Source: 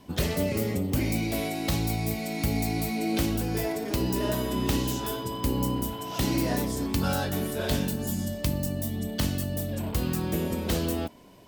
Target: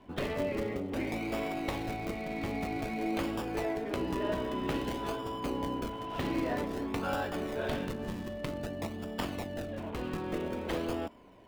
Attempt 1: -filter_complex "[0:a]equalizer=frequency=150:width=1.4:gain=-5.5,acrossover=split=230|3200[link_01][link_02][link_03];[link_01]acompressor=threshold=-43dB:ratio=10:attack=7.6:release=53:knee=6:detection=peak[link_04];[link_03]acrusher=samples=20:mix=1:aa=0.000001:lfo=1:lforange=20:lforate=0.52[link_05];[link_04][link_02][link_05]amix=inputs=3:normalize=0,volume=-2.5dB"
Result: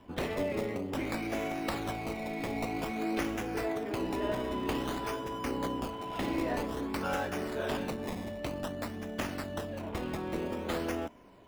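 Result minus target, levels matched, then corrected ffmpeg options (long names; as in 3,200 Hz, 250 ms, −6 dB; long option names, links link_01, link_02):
sample-and-hold swept by an LFO: distortion −6 dB
-filter_complex "[0:a]equalizer=frequency=150:width=1.4:gain=-5.5,acrossover=split=230|3200[link_01][link_02][link_03];[link_01]acompressor=threshold=-43dB:ratio=10:attack=7.6:release=53:knee=6:detection=peak[link_04];[link_03]acrusher=samples=41:mix=1:aa=0.000001:lfo=1:lforange=41:lforate=0.52[link_05];[link_04][link_02][link_05]amix=inputs=3:normalize=0,volume=-2.5dB"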